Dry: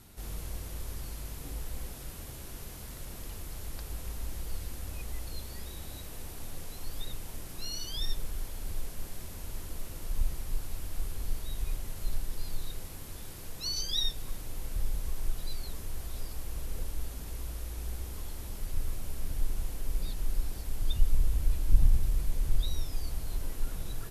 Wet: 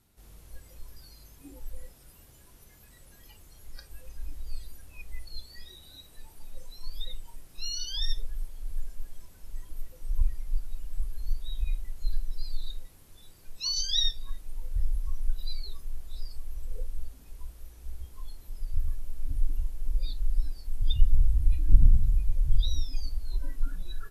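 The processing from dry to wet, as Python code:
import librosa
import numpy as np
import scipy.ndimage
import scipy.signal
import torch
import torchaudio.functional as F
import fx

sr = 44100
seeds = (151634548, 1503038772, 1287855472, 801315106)

y = fx.noise_reduce_blind(x, sr, reduce_db=17)
y = y * librosa.db_to_amplitude(4.5)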